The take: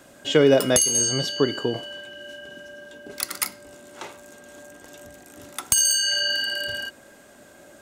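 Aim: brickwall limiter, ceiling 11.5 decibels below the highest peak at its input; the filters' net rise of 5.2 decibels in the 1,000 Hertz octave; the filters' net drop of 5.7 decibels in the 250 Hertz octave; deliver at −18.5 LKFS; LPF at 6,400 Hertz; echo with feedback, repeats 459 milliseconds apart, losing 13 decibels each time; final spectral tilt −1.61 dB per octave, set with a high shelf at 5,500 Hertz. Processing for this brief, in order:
low-pass filter 6,400 Hz
parametric band 250 Hz −7.5 dB
parametric band 1,000 Hz +8 dB
high-shelf EQ 5,500 Hz −7 dB
brickwall limiter −18 dBFS
repeating echo 459 ms, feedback 22%, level −13 dB
level +10 dB

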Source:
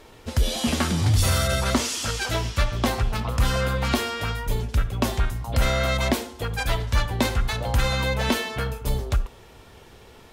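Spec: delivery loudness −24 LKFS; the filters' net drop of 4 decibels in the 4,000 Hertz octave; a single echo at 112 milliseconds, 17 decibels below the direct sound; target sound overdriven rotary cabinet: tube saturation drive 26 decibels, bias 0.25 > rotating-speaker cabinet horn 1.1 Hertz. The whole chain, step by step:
parametric band 4,000 Hz −5 dB
single-tap delay 112 ms −17 dB
tube saturation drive 26 dB, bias 0.25
rotating-speaker cabinet horn 1.1 Hz
level +9 dB

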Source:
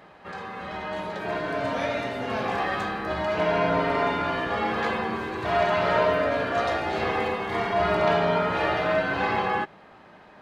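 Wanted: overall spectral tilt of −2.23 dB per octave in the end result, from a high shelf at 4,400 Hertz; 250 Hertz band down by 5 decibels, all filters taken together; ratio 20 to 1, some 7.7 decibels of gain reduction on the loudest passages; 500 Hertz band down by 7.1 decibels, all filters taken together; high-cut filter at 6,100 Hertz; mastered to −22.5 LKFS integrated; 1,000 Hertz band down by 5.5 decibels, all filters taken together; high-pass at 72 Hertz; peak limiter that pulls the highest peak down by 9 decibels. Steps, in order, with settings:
high-pass filter 72 Hz
low-pass filter 6,100 Hz
parametric band 250 Hz −4.5 dB
parametric band 500 Hz −7 dB
parametric band 1,000 Hz −5 dB
high-shelf EQ 4,400 Hz +7 dB
downward compressor 20 to 1, threshold −31 dBFS
level +17 dB
brickwall limiter −14.5 dBFS

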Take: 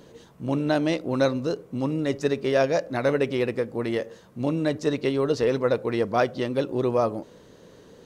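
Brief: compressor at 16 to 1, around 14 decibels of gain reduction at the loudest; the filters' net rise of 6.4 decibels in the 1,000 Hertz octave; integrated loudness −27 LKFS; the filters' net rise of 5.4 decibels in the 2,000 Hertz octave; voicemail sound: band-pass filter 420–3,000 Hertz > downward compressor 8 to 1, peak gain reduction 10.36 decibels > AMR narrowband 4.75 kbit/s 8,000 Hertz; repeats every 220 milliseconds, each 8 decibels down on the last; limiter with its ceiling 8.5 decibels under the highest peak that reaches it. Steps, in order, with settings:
parametric band 1,000 Hz +8.5 dB
parametric band 2,000 Hz +4.5 dB
downward compressor 16 to 1, threshold −27 dBFS
brickwall limiter −24 dBFS
band-pass filter 420–3,000 Hz
repeating echo 220 ms, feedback 40%, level −8 dB
downward compressor 8 to 1, threshold −40 dBFS
level +20 dB
AMR narrowband 4.75 kbit/s 8,000 Hz

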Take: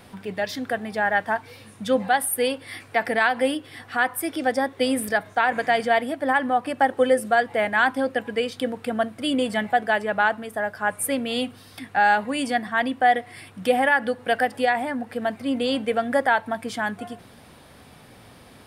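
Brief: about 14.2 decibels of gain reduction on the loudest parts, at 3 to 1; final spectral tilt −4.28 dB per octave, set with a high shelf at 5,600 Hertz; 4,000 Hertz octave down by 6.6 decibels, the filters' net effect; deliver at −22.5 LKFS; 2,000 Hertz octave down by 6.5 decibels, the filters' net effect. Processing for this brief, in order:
parametric band 2,000 Hz −7.5 dB
parametric band 4,000 Hz −4.5 dB
high-shelf EQ 5,600 Hz −3.5 dB
downward compressor 3 to 1, threshold −35 dBFS
level +13.5 dB

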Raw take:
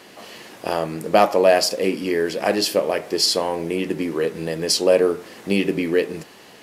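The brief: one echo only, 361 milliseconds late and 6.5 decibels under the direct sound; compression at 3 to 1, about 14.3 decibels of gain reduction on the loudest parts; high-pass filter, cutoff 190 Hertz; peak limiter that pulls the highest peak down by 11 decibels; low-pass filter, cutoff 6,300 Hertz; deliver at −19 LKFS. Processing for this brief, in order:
high-pass filter 190 Hz
low-pass filter 6,300 Hz
downward compressor 3 to 1, threshold −30 dBFS
brickwall limiter −25.5 dBFS
single-tap delay 361 ms −6.5 dB
level +16 dB

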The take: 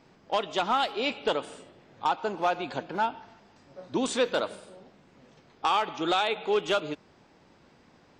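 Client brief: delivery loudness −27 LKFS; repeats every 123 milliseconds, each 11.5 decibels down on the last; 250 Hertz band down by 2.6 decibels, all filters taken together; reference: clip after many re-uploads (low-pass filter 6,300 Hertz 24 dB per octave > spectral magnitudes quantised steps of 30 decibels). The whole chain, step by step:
low-pass filter 6,300 Hz 24 dB per octave
parametric band 250 Hz −3.5 dB
repeating echo 123 ms, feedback 27%, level −11.5 dB
spectral magnitudes quantised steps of 30 dB
level +2.5 dB

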